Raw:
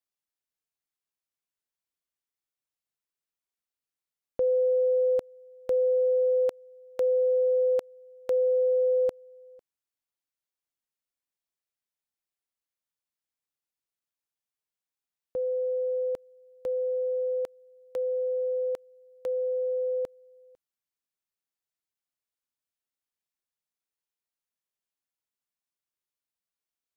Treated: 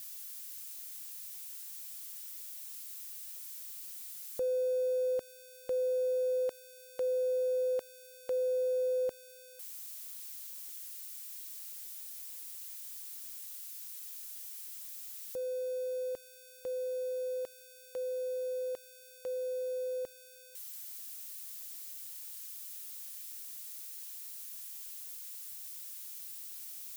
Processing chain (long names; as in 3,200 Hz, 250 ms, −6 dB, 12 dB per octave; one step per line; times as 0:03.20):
spike at every zero crossing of −32 dBFS
level −7.5 dB